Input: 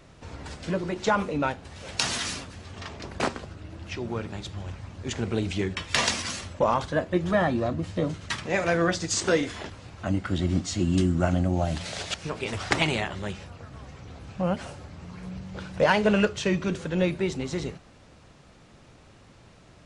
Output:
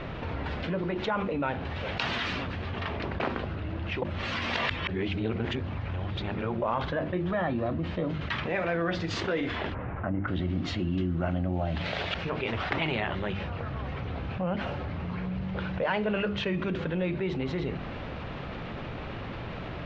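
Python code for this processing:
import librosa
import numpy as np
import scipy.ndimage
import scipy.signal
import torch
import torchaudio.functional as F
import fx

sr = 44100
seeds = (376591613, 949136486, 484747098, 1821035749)

y = fx.lowpass(x, sr, hz=1900.0, slope=24, at=(9.73, 10.27), fade=0.02)
y = fx.edit(y, sr, fx.reverse_span(start_s=4.02, length_s=2.6), tone=tone)
y = scipy.signal.sosfilt(scipy.signal.butter(4, 3300.0, 'lowpass', fs=sr, output='sos'), y)
y = fx.hum_notches(y, sr, base_hz=50, count=7)
y = fx.env_flatten(y, sr, amount_pct=70)
y = y * 10.0 ** (-9.0 / 20.0)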